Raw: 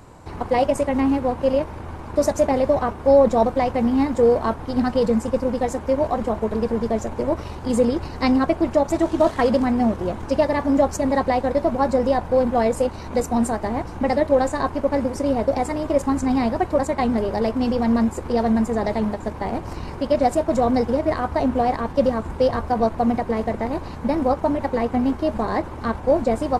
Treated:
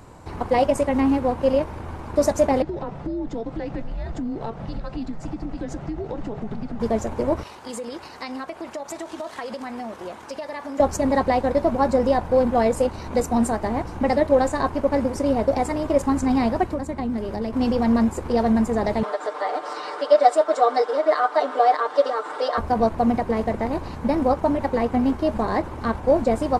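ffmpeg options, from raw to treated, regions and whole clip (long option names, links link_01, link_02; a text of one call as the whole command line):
ffmpeg -i in.wav -filter_complex "[0:a]asettb=1/sr,asplit=3[link_01][link_02][link_03];[link_01]atrim=end=2.624[link_04];[link_02]atrim=start=2.62:end=6.8,asetpts=PTS-STARTPTS,afade=type=in:duration=0.004:curve=qsin,afade=type=out:start_time=4.176:duration=0.004:curve=qsin,lowpass=5500,acompressor=threshold=-25dB:ratio=8:attack=3.2:release=140:knee=1:detection=peak,afreqshift=-220[link_05];[link_03]atrim=start=6.796[link_06];[link_04][link_05]acrossfade=duration=0.004:curve1=hsin:curve2=qsin[link_07];[link_07][link_06]acrossfade=duration=0.004:curve1=qsin:curve2=hsin,asettb=1/sr,asplit=3[link_08][link_09][link_10];[link_08]atrim=end=7.434[link_11];[link_09]atrim=start=7.43:end=10.8,asetpts=PTS-STARTPTS,afade=type=in:duration=0.004:curve=qsin,afade=type=out:start_time=3.366:duration=0.004:curve=qsin,highpass=frequency=1000:poles=1,acompressor=threshold=-28dB:ratio=6:attack=3.2:release=140:knee=1:detection=peak[link_12];[link_10]atrim=start=10.796[link_13];[link_11][link_12]acrossfade=duration=0.004:curve1=hsin:curve2=qsin[link_14];[link_14][link_13]acrossfade=duration=0.004:curve1=qsin:curve2=hsin,asettb=1/sr,asplit=3[link_15][link_16][link_17];[link_15]atrim=end=16.634[link_18];[link_16]atrim=start=16.63:end=17.53,asetpts=PTS-STARTPTS,afade=type=in:duration=0.004:curve=qsin,afade=type=out:start_time=0.896:duration=0.004:curve=qsin,equalizer=frequency=280:width=1.3:gain=6.5,acrossover=split=180|1100[link_19][link_20][link_21];[link_19]acompressor=threshold=-31dB:ratio=4[link_22];[link_20]acompressor=threshold=-29dB:ratio=4[link_23];[link_21]acompressor=threshold=-42dB:ratio=4[link_24];[link_22][link_23][link_24]amix=inputs=3:normalize=0[link_25];[link_17]atrim=start=17.526[link_26];[link_18][link_25]acrossfade=duration=0.004:curve1=hsin:curve2=qsin[link_27];[link_27][link_26]acrossfade=duration=0.004:curve1=qsin:curve2=hsin,asettb=1/sr,asplit=3[link_28][link_29][link_30];[link_28]atrim=end=19.034[link_31];[link_29]atrim=start=19.03:end=22.58,asetpts=PTS-STARTPTS,afade=type=in:duration=0.004:curve=qsin,afade=type=out:start_time=3.546:duration=0.004:curve=qsin,highpass=frequency=450:width=0.5412,highpass=frequency=450:width=1.3066,equalizer=frequency=920:width_type=q:width=4:gain=-3,equalizer=frequency=1300:width_type=q:width=4:gain=7,equalizer=frequency=2500:width_type=q:width=4:gain=-6,equalizer=frequency=3600:width_type=q:width=4:gain=3,equalizer=frequency=6500:width_type=q:width=4:gain=-6,lowpass=frequency=8400:width=0.5412,lowpass=frequency=8400:width=1.3066,aecho=1:1:6.7:0.99,atrim=end_sample=156555,acompressor=mode=upward:threshold=-24dB:ratio=2.5:attack=3.2:release=140:knee=2.83:detection=peak[link_32];[link_30]atrim=start=22.576[link_33];[link_31][link_32]acrossfade=duration=0.004:curve1=hsin:curve2=qsin[link_34];[link_34][link_33]acrossfade=duration=0.004:curve1=qsin:curve2=hsin" out.wav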